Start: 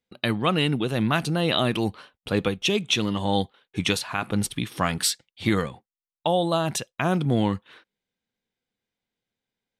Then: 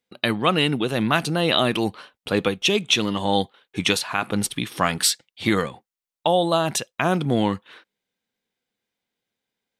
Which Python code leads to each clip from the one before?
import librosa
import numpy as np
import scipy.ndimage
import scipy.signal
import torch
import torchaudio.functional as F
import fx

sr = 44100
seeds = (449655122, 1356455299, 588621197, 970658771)

y = fx.low_shelf(x, sr, hz=130.0, db=-11.0)
y = F.gain(torch.from_numpy(y), 4.0).numpy()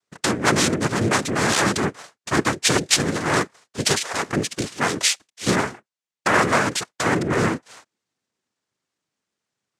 y = fx.noise_vocoder(x, sr, seeds[0], bands=3)
y = F.gain(torch.from_numpy(y), 1.0).numpy()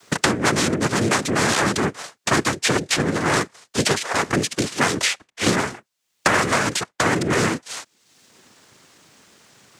y = fx.band_squash(x, sr, depth_pct=100)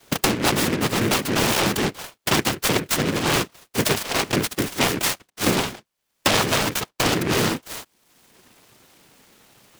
y = fx.noise_mod_delay(x, sr, seeds[1], noise_hz=1600.0, depth_ms=0.16)
y = F.gain(torch.from_numpy(y), -1.0).numpy()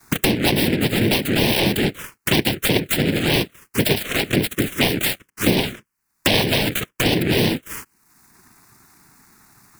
y = fx.env_phaser(x, sr, low_hz=530.0, high_hz=1300.0, full_db=-16.5)
y = F.gain(torch.from_numpy(y), 4.5).numpy()